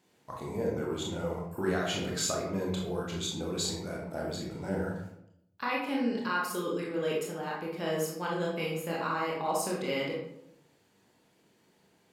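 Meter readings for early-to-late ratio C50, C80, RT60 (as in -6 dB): 2.0 dB, 6.0 dB, 0.80 s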